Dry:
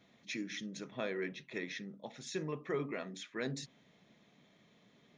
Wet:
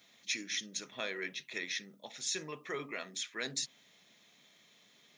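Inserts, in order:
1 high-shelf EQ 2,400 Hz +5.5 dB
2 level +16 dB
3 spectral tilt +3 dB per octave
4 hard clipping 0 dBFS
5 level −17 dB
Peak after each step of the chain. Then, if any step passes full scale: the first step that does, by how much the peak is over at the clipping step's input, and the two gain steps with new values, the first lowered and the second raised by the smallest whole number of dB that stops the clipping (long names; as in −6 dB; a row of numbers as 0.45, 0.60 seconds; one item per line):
−22.5, −6.5, −3.5, −3.5, −20.5 dBFS
no step passes full scale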